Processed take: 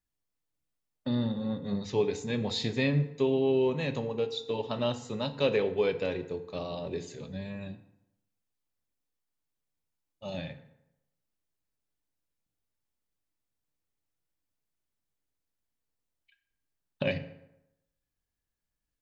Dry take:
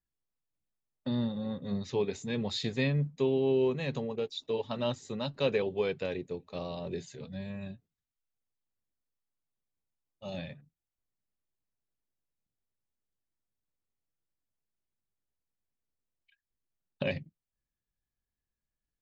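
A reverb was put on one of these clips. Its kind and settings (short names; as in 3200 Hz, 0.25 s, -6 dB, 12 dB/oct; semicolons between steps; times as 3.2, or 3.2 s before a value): FDN reverb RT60 0.88 s, low-frequency decay 0.95×, high-frequency decay 0.65×, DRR 8 dB; gain +2 dB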